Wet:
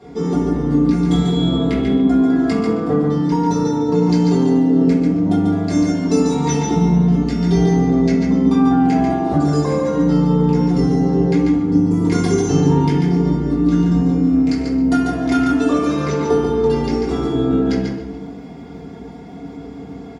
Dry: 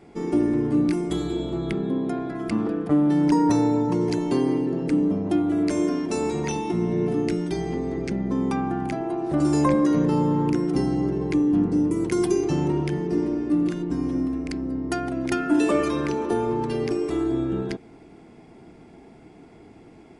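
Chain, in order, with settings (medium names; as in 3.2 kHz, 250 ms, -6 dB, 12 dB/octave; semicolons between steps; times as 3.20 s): treble shelf 6.1 kHz -8 dB; comb 4.2 ms, depth 54%; compression, threshold -24 dBFS, peak gain reduction 10 dB; crackle 69 per s -57 dBFS; delay 142 ms -5 dB; reverberation RT60 1.1 s, pre-delay 3 ms, DRR -6.5 dB; trim -1 dB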